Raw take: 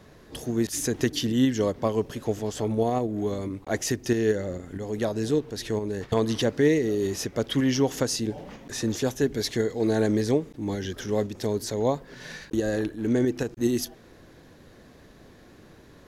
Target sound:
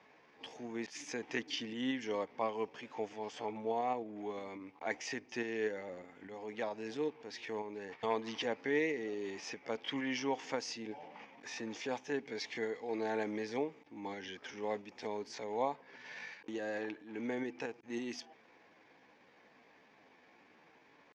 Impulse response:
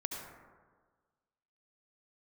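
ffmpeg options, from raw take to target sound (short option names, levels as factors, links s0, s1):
-af "aeval=exprs='val(0)+0.00141*(sin(2*PI*50*n/s)+sin(2*PI*2*50*n/s)/2+sin(2*PI*3*50*n/s)/3+sin(2*PI*4*50*n/s)/4+sin(2*PI*5*50*n/s)/5)':c=same,highpass=370,equalizer=f=370:t=q:w=4:g=-7,equalizer=f=590:t=q:w=4:g=-5,equalizer=f=860:t=q:w=4:g=7,equalizer=f=1400:t=q:w=4:g=-3,equalizer=f=2300:t=q:w=4:g=9,equalizer=f=4000:t=q:w=4:g=-8,lowpass=f=5100:w=0.5412,lowpass=f=5100:w=1.3066,atempo=0.76,volume=0.422"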